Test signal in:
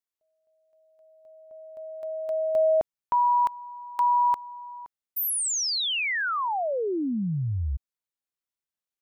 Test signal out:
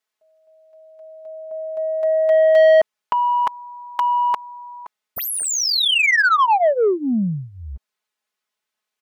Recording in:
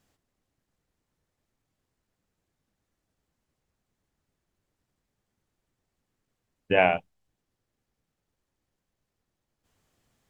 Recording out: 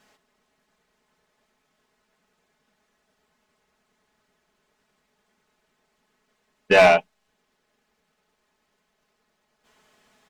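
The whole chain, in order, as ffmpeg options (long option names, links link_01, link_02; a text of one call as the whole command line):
ffmpeg -i in.wav -filter_complex "[0:a]aecho=1:1:4.7:0.82,asplit=2[link_01][link_02];[link_02]highpass=frequency=720:poles=1,volume=20dB,asoftclip=type=tanh:threshold=-5.5dB[link_03];[link_01][link_03]amix=inputs=2:normalize=0,lowpass=frequency=2900:poles=1,volume=-6dB" out.wav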